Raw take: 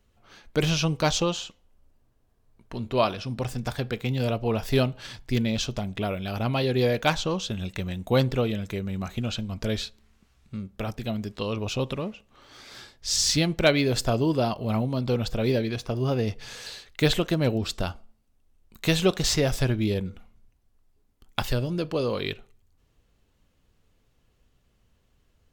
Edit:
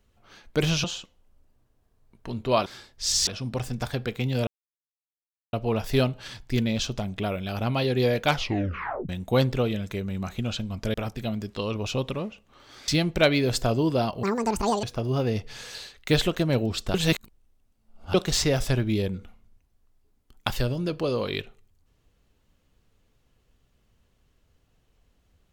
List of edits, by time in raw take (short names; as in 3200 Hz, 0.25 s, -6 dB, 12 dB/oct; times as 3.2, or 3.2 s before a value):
0.84–1.3 cut
4.32 insert silence 1.06 s
7.06 tape stop 0.82 s
9.73–10.76 cut
12.7–13.31 move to 3.12
14.66–15.75 speed 181%
17.86–19.06 reverse